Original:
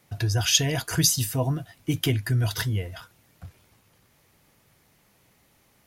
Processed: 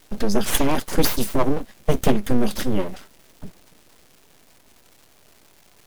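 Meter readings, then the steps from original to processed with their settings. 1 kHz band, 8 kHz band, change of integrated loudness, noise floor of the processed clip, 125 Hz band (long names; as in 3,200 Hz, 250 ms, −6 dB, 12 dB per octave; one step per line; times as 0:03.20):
+9.5 dB, −5.0 dB, +1.0 dB, −54 dBFS, −5.0 dB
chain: low shelf with overshoot 650 Hz +7 dB, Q 3
surface crackle 550 per second −42 dBFS
full-wave rectification
level +1.5 dB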